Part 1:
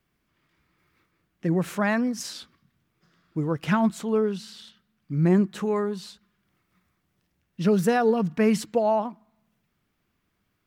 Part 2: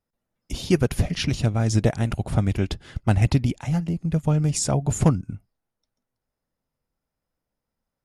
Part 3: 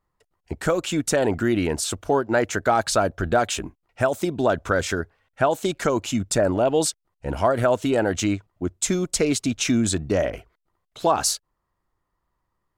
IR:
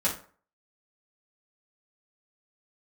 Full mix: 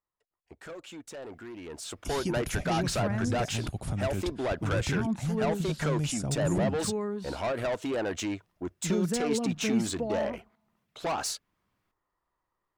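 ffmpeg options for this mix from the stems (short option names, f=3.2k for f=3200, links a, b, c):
-filter_complex "[0:a]adelay=1250,volume=-5dB[a];[1:a]highshelf=f=6k:g=11,adelay=1550,volume=-7.5dB[b];[2:a]bass=f=250:g=-9,treble=f=4k:g=-4,asoftclip=type=tanh:threshold=-23.5dB,volume=-3dB,afade=t=in:st=1.63:d=0.55:silence=0.266073[c];[a][b]amix=inputs=2:normalize=0,acrossover=split=390[d][e];[e]acompressor=threshold=-36dB:ratio=4[f];[d][f]amix=inputs=2:normalize=0,alimiter=limit=-22dB:level=0:latency=1:release=32,volume=0dB[g];[c][g]amix=inputs=2:normalize=0,highshelf=f=11k:g=-3.5"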